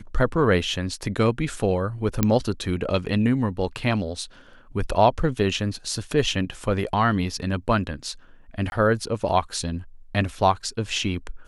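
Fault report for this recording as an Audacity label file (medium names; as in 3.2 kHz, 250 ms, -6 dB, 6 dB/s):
2.230000	2.230000	pop -5 dBFS
8.700000	8.720000	dropout 21 ms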